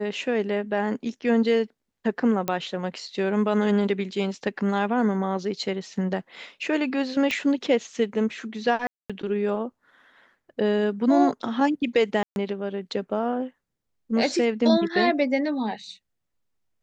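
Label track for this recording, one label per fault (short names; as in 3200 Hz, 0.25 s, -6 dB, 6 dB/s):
2.480000	2.480000	pop -11 dBFS
7.310000	7.310000	pop -12 dBFS
8.870000	9.100000	gap 0.226 s
12.230000	12.360000	gap 0.131 s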